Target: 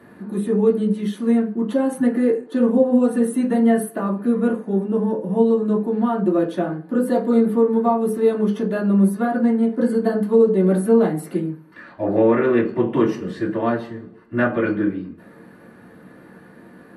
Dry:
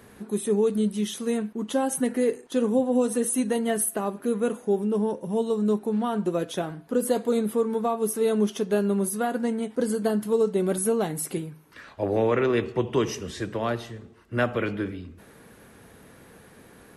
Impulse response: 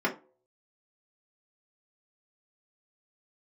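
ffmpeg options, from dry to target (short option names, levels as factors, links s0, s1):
-filter_complex "[1:a]atrim=start_sample=2205,asetrate=37485,aresample=44100[s0];[0:a][s0]afir=irnorm=-1:irlink=0,volume=0.398"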